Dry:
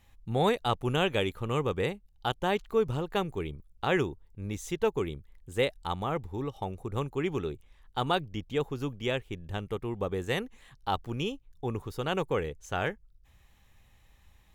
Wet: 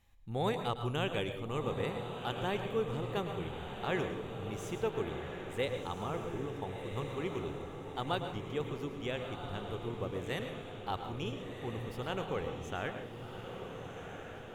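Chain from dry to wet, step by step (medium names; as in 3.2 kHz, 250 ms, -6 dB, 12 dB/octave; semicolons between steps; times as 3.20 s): echo that smears into a reverb 1402 ms, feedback 55%, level -7 dB; on a send at -7.5 dB: reverberation RT60 0.50 s, pre-delay 107 ms; on the sum: trim -7.5 dB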